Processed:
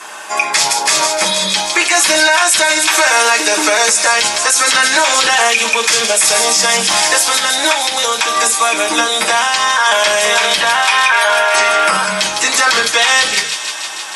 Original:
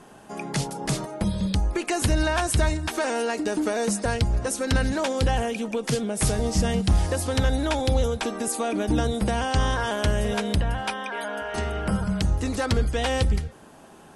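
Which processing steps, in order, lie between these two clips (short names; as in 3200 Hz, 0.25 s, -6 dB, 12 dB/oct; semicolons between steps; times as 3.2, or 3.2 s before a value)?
HPF 1000 Hz 12 dB/oct; 7.28–9.86 compressor, threshold -34 dBFS, peak gain reduction 10 dB; thin delay 0.157 s, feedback 80%, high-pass 3100 Hz, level -11 dB; reverb, pre-delay 3 ms, DRR -5.5 dB; maximiser +20.5 dB; gain -1 dB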